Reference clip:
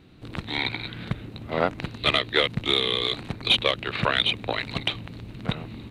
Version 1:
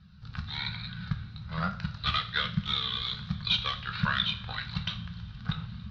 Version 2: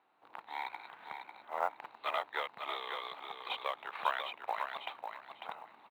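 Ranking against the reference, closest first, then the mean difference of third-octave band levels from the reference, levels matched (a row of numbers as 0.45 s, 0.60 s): 1, 2; 7.5 dB, 11.0 dB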